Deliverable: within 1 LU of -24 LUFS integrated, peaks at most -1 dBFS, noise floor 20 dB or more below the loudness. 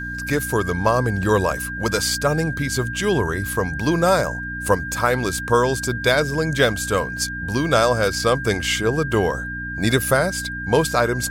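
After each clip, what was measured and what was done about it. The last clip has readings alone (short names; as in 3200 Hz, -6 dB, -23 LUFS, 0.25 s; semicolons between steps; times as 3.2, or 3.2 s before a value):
hum 60 Hz; harmonics up to 300 Hz; hum level -30 dBFS; steady tone 1600 Hz; tone level -28 dBFS; loudness -20.5 LUFS; peak -2.5 dBFS; loudness target -24.0 LUFS
-> de-hum 60 Hz, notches 5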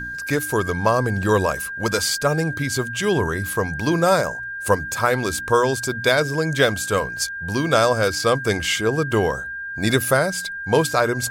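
hum none; steady tone 1600 Hz; tone level -28 dBFS
-> notch 1600 Hz, Q 30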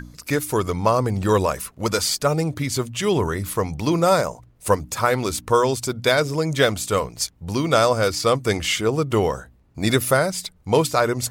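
steady tone none; loudness -21.5 LUFS; peak -4.0 dBFS; loudness target -24.0 LUFS
-> gain -2.5 dB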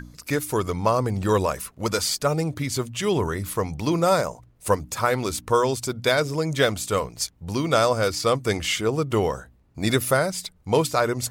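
loudness -24.0 LUFS; peak -6.5 dBFS; noise floor -58 dBFS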